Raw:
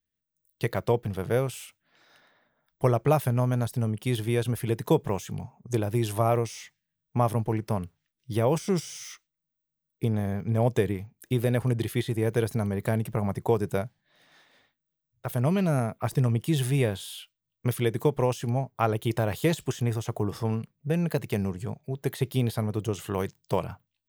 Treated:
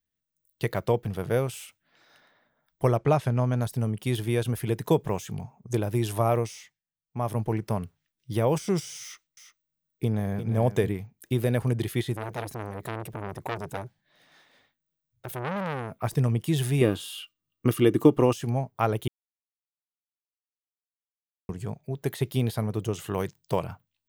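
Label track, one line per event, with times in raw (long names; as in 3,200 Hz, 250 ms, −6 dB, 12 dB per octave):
2.970000	3.610000	low-pass filter 6,500 Hz
6.430000	7.440000	duck −15.5 dB, fades 0.39 s
9.020000	10.890000	single-tap delay 350 ms −9.5 dB
12.150000	16.020000	saturating transformer saturates under 2,000 Hz
16.810000	18.330000	hollow resonant body resonances 300/1,200/2,800 Hz, height 14 dB, ringing for 35 ms
19.080000	21.490000	silence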